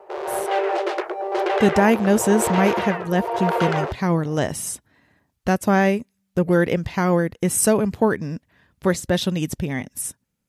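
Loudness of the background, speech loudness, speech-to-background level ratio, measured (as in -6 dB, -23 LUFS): -24.5 LUFS, -21.5 LUFS, 3.0 dB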